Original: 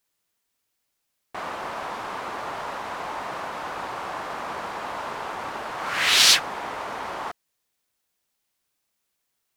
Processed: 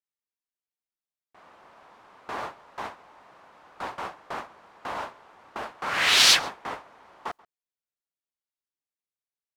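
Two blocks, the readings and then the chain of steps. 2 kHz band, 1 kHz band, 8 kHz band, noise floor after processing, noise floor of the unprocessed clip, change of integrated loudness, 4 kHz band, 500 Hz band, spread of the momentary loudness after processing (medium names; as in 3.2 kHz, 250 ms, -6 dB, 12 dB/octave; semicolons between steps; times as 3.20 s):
-1.0 dB, -4.5 dB, -2.5 dB, under -85 dBFS, -78 dBFS, +3.0 dB, -1.5 dB, -5.0 dB, 24 LU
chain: gate with hold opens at -21 dBFS; treble shelf 6.6 kHz -5 dB; echo from a far wall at 23 m, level -24 dB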